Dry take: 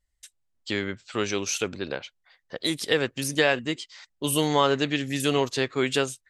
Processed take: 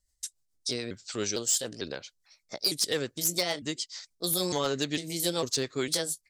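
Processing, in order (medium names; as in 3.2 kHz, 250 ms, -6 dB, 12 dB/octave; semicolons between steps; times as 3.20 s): pitch shift switched off and on +3 st, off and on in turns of 452 ms; in parallel at -1.5 dB: compression 16:1, threshold -37 dBFS, peak gain reduction 22 dB; on the sum: rotary cabinet horn 7 Hz; resonant high shelf 3.8 kHz +9.5 dB, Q 1.5; hard clipper -14 dBFS, distortion -17 dB; trim -5 dB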